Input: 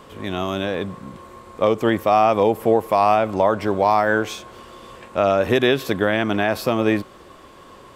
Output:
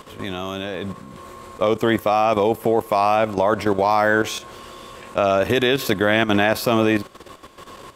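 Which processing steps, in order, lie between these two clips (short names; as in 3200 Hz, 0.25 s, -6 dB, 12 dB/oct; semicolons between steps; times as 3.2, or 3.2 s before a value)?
high shelf 2500 Hz +5.5 dB; level quantiser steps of 11 dB; gain +5 dB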